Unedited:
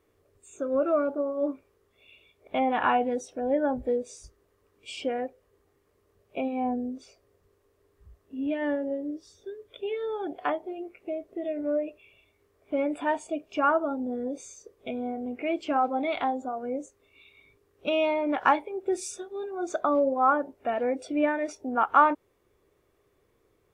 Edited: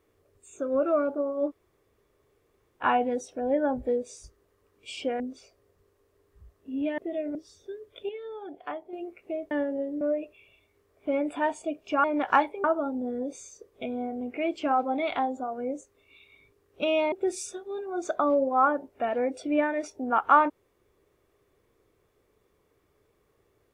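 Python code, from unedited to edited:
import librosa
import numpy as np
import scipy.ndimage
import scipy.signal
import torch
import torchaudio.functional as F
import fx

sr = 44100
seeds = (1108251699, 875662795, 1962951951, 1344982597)

y = fx.edit(x, sr, fx.room_tone_fill(start_s=1.49, length_s=1.34, crossfade_s=0.06),
    fx.cut(start_s=5.2, length_s=1.65),
    fx.swap(start_s=8.63, length_s=0.5, other_s=11.29, other_length_s=0.37),
    fx.clip_gain(start_s=9.87, length_s=0.84, db=-7.5),
    fx.move(start_s=18.17, length_s=0.6, to_s=13.69), tone=tone)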